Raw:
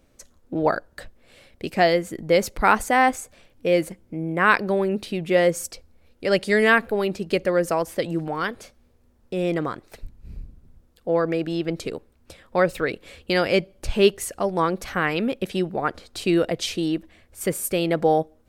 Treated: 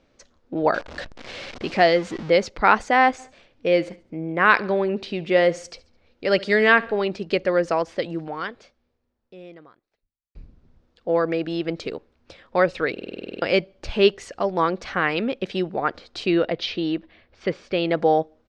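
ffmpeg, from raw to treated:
-filter_complex "[0:a]asettb=1/sr,asplit=3[a][b][c];[a]atrim=end=0.744[d];[b]atrim=start=0.74:end=2.3,asetpts=PTS-STARTPTS,afade=t=in:d=0.004:c=qsin,afade=t=out:st=1.556:d=0.004:c=qsin,aeval=exprs='val(0)+0.5*0.0282*sgn(val(0))':c=same[e];[c]atrim=start=2.296[f];[d][e]acrossfade=d=0.004:c1=hsin:c2=qsin[g];[g][f]acrossfade=d=0.004:c1=qsin:c2=hsin,asplit=3[h][i][j];[h]afade=t=out:st=3.18:d=0.02[k];[i]aecho=1:1:70|140|210:0.0944|0.0415|0.0183,afade=t=in:st=3.18:d=0.02,afade=t=out:st=7.07:d=0.02[l];[j]afade=t=in:st=7.07:d=0.02[m];[k][l][m]amix=inputs=3:normalize=0,asettb=1/sr,asplit=3[n][o][p];[n]atrim=end=16.264[q];[o]atrim=start=16.26:end=17.89,asetpts=PTS-STARTPTS,afade=t=in:d=0.004:c=qsin,afade=t=out:st=1.626:d=0.004:c=qsin,lowpass=f=4.7k:w=0.5412,lowpass=f=4.7k:w=1.3066[r];[p]atrim=start=17.886[s];[q][r]acrossfade=d=0.004:c1=hsin:c2=qsin[t];[t][s]acrossfade=d=0.004:c1=qsin:c2=hsin,asplit=12[u][v][w][x][y][z][aa][ab][ac][ad][ae][af];[u]atrim=end=10.35,asetpts=PTS-STARTPTS,afade=t=out:st=7.83:d=2.52:c=qua[ag];[v]atrim=start=10.35:end=12.972,asetpts=PTS-STARTPTS,afade=t=in:d=0.004:c=hsin[ah];[w]atrim=start=12.918:end=12.972[ai];[x]atrim=start=12.918:end=12.972[aj];[y]atrim=start=12.918:end=12.972[ak];[z]atrim=start=12.918:end=12.972[al];[aa]atrim=start=12.918:end=12.972[am];[ab]atrim=start=12.918:end=12.972[an];[ac]atrim=start=12.918:end=12.972[ao];[ad]atrim=start=12.918:end=12.972[ap];[ae]atrim=start=12.918:end=12.972[aq];[af]atrim=start=13.418[ar];[ag][ah]concat=n=2:v=0:a=1[as];[as][ai]acrossfade=d=0.004:c1=hsin:c2=hsin[at];[at][aj]acrossfade=d=0.004:c1=hsin:c2=hsin[au];[au][ak]acrossfade=d=0.004:c1=hsin:c2=hsin[av];[av][al]acrossfade=d=0.004:c1=hsin:c2=hsin[aw];[aw][am]acrossfade=d=0.004:c1=hsin:c2=hsin[ax];[ax][an]acrossfade=d=0.004:c1=hsin:c2=hsin[ay];[ay][ao]acrossfade=d=0.004:c1=hsin:c2=hsin[az];[az][ap]acrossfade=d=0.004:c1=hsin:c2=hsin[ba];[ba][aq]acrossfade=d=0.004:c1=hsin:c2=hsin[bb];[bb][ar]acrossfade=d=0.004:c1=hsin:c2=hsin,lowpass=f=5.4k:w=0.5412,lowpass=f=5.4k:w=1.3066,lowshelf=f=180:g=-8,volume=1.5dB"

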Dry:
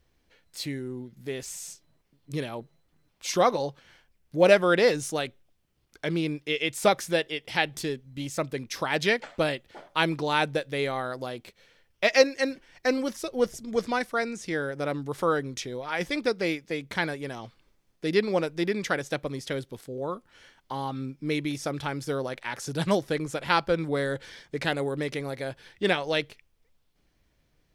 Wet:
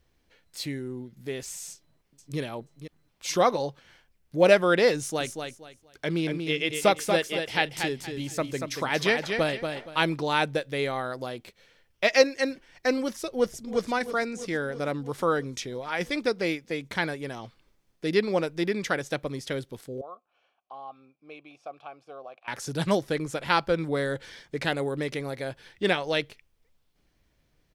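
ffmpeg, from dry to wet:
-filter_complex "[0:a]asplit=2[a][b];[b]afade=t=in:st=1.7:d=0.01,afade=t=out:st=2.39:d=0.01,aecho=0:1:480|960:0.298538|0.0447807[c];[a][c]amix=inputs=2:normalize=0,asettb=1/sr,asplit=3[d][e][f];[d]atrim=end=4.974[g];[e]atrim=start=4.97:end=10.11,asetpts=PTS-STARTPTS,afade=t=in:d=0.004:c=qsin,afade=t=out:st=5.136:d=0.004:c=qsin,aecho=1:1:235|470|705:0.501|0.125|0.0313,atrim=end_sample=226674[h];[f]atrim=start=10.106[i];[g][h]acrossfade=d=0.004:c1=hsin:c2=qsin[j];[j][i]acrossfade=d=0.004:c1=qsin:c2=hsin,asplit=2[k][l];[l]afade=t=in:st=13.31:d=0.01,afade=t=out:st=13.9:d=0.01,aecho=0:1:330|660|990|1320|1650|1980|2310|2640|2970|3300:0.251189|0.175832|0.123082|0.0861577|0.0603104|0.0422173|0.0295521|0.0206865|0.0144805|0.0101364[m];[k][m]amix=inputs=2:normalize=0,asettb=1/sr,asplit=3[n][o][p];[n]atrim=end=20.014[q];[o]atrim=start=20.01:end=22.48,asetpts=PTS-STARTPTS,afade=t=in:d=0.004:c=qsin,afade=t=out:st=2.466:d=0.004:c=qsin,asplit=3[r][s][t];[r]bandpass=f=730:t=q:w=8,volume=0dB[u];[s]bandpass=f=1.09k:t=q:w=8,volume=-6dB[v];[t]bandpass=f=2.44k:t=q:w=8,volume=-9dB[w];[u][v][w]amix=inputs=3:normalize=0[x];[p]atrim=start=22.476[y];[q][x]acrossfade=d=0.004:c1=hsin:c2=qsin[z];[z][y]acrossfade=d=0.004:c1=qsin:c2=hsin"

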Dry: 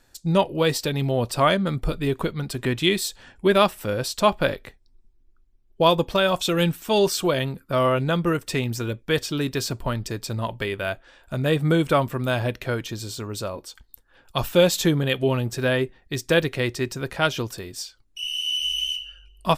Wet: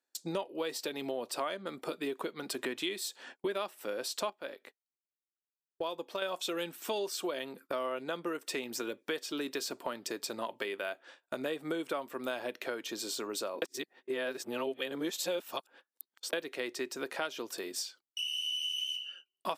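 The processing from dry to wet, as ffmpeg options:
-filter_complex "[0:a]asplit=5[a][b][c][d][e];[a]atrim=end=4.302[f];[b]atrim=start=4.298:end=6.222,asetpts=PTS-STARTPTS,volume=-9dB[g];[c]atrim=start=6.218:end=13.622[h];[d]atrim=start=13.618:end=16.332,asetpts=PTS-STARTPTS,areverse[i];[e]atrim=start=16.328[j];[f][g]acrossfade=d=0.004:c1=hsin:c2=hsin[k];[k][h]acrossfade=d=0.004:c1=hsin:c2=hsin[l];[l][i]acrossfade=d=0.004:c1=hsin:c2=hsin[m];[m][j]acrossfade=d=0.004:c1=hsin:c2=hsin,highpass=f=280:w=0.5412,highpass=f=280:w=1.3066,agate=range=-26dB:threshold=-49dB:ratio=16:detection=peak,acompressor=threshold=-34dB:ratio=5"

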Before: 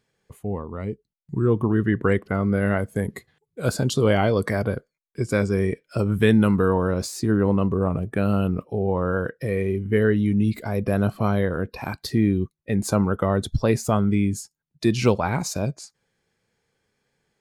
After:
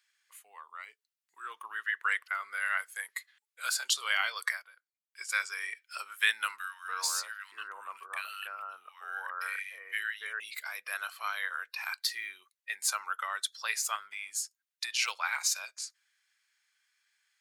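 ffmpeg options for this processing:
-filter_complex "[0:a]asettb=1/sr,asplit=3[a][b][c];[a]atrim=end=6.584[d];[b]atrim=start=6.58:end=10.4,asetpts=PTS-STARTPTS,afade=t=in:d=0.004:c=qsin,afade=t=out:st=3.816:d=0.004:c=qsin,acrossover=split=1500[e][f];[e]adelay=290[g];[g][f]amix=inputs=2:normalize=0,atrim=end_sample=168462[h];[c]atrim=start=10.396[i];[d][h]acrossfade=d=0.004:c1=hsin:c2=qsin[j];[j][i]acrossfade=d=0.004:c1=qsin:c2=hsin,asettb=1/sr,asplit=3[k][l][m];[k]atrim=end=13.954[n];[l]atrim=start=13.95:end=15.08,asetpts=PTS-STARTPTS,afade=t=in:d=0.004:c=qsin,afade=t=out:st=1.126:d=0.004:c=qsin,acompressor=threshold=-19dB:ratio=6:attack=3.2:release=140:knee=1:detection=peak[o];[m]atrim=start=15.076[p];[n][o]acrossfade=d=0.004:c1=hsin:c2=qsin[q];[q][p]acrossfade=d=0.004:c1=qsin:c2=hsin,asplit=3[r][s][t];[r]atrim=end=4.62,asetpts=PTS-STARTPTS,afade=t=out:st=4.47:d=0.15:silence=0.125893[u];[s]atrim=start=4.62:end=5.05,asetpts=PTS-STARTPTS,volume=-18dB[v];[t]atrim=start=5.05,asetpts=PTS-STARTPTS,afade=t=in:d=0.15:silence=0.125893[w];[u][v][w]concat=n=3:v=0:a=1,highpass=f=1.4k:w=0.5412,highpass=f=1.4k:w=1.3066,volume=2dB"

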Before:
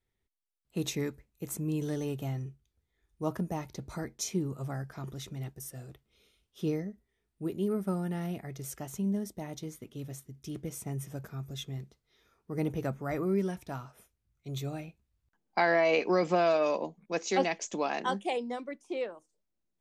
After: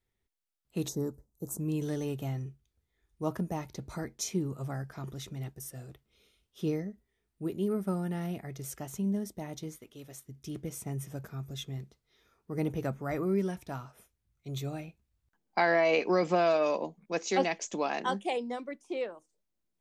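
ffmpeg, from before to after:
-filter_complex "[0:a]asettb=1/sr,asplit=3[a][b][c];[a]atrim=end=0.884[d];[b]atrim=start=0.88:end=1.6,asetpts=PTS-STARTPTS,afade=t=in:d=0.004:c=qsin,afade=t=out:st=0.716:d=0.004:c=qsin,asuperstop=centerf=2500:order=4:qfactor=0.55[e];[c]atrim=start=1.596[f];[d][e]acrossfade=d=0.004:c1=hsin:c2=qsin[g];[g][f]acrossfade=d=0.004:c1=qsin:c2=hsin,asettb=1/sr,asplit=3[h][i][j];[h]atrim=end=9.784[k];[i]atrim=start=9.78:end=10.28,asetpts=PTS-STARTPTS,afade=t=in:d=0.004:c=qsin,afade=t=out:st=0.496:d=0.004:c=qsin,equalizer=f=140:w=0.56:g=-11[l];[j]atrim=start=10.276[m];[k][l]acrossfade=d=0.004:c1=hsin:c2=qsin[n];[n][m]acrossfade=d=0.004:c1=qsin:c2=hsin"

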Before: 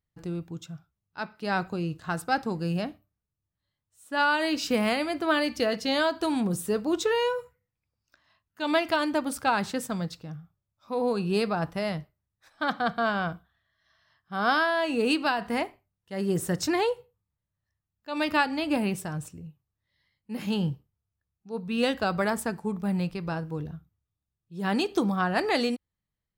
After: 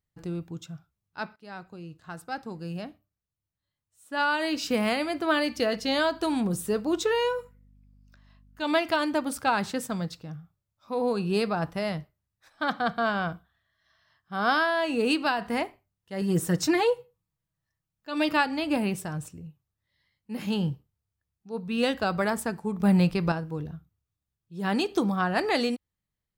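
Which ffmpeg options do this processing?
-filter_complex "[0:a]asettb=1/sr,asplit=3[a][b][c];[a]atrim=end=5.754[d];[b]atrim=start=5.75:end=8.63,asetpts=PTS-STARTPTS,afade=t=in:d=0.004:c=qsin,afade=t=out:st=2.876:d=0.004:c=qsin,aeval=exprs='val(0)+0.00158*(sin(2*PI*50*n/s)+sin(2*PI*2*50*n/s)/2+sin(2*PI*3*50*n/s)/3+sin(2*PI*4*50*n/s)/4+sin(2*PI*5*50*n/s)/5)':c=same[e];[c]atrim=start=8.626[f];[d][e]acrossfade=d=0.004:c1=hsin:c2=qsin[g];[g][f]acrossfade=d=0.004:c1=qsin:c2=hsin,asettb=1/sr,asplit=3[h][i][j];[h]atrim=end=16.214[k];[i]atrim=start=16.21:end=18.34,asetpts=PTS-STARTPTS,afade=t=in:d=0.004:c=qsin,afade=t=out:st=2.126:d=0.004:c=qsin,aecho=1:1:6.2:0.6,atrim=end_sample=93933[l];[j]atrim=start=18.336[m];[k][l]acrossfade=d=0.004:c1=hsin:c2=qsin[n];[n][m]acrossfade=d=0.004:c1=qsin:c2=hsin,asettb=1/sr,asplit=3[o][p][q];[o]atrim=end=22.804[r];[p]atrim=start=22.8:end=23.32,asetpts=PTS-STARTPTS,afade=t=in:d=0.004:c=qsin,afade=t=out:st=0.516:d=0.004:c=qsin,acontrast=85[s];[q]atrim=start=23.316[t];[r][s]acrossfade=d=0.004:c1=hsin:c2=qsin[u];[u][t]acrossfade=d=0.004:c1=qsin:c2=hsin,asplit=2[v][w];[v]atrim=end=1.36,asetpts=PTS-STARTPTS,afade=t=out:st=1.356:d=0.004:c=hsin:silence=0.158489[x];[w]atrim=start=1.36,asetpts=PTS-STARTPTS,afade=t=in:d=3.72:silence=0.158489[y];[x][y]concat=n=2:v=0:a=1"

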